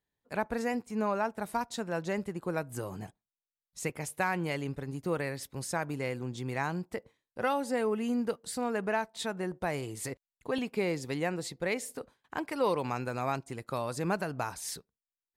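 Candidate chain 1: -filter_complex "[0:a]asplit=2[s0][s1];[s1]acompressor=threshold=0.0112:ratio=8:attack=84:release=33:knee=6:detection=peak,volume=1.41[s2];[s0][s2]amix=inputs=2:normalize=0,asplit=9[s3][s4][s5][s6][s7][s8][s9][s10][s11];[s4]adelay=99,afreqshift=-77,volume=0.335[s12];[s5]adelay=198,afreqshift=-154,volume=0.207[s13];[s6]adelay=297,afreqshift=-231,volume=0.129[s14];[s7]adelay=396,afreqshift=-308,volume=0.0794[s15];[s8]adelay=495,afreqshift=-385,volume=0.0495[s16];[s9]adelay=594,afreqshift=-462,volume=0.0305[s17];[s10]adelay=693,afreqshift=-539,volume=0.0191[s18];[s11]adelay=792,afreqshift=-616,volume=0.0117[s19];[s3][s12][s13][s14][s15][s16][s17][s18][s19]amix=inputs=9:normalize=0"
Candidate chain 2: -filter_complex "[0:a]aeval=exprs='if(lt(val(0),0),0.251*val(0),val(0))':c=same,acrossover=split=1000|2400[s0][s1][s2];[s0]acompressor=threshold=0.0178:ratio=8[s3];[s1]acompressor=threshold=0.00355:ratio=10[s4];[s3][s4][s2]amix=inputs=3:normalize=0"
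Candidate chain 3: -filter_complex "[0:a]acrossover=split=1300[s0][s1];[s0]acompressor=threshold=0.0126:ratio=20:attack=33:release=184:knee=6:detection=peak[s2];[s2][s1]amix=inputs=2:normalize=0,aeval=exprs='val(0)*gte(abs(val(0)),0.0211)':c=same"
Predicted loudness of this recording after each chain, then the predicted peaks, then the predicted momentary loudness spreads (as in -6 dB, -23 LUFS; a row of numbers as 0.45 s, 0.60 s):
-27.5 LUFS, -42.0 LUFS, -40.5 LUFS; -9.5 dBFS, -21.0 dBFS, -19.0 dBFS; 8 LU, 5 LU, 7 LU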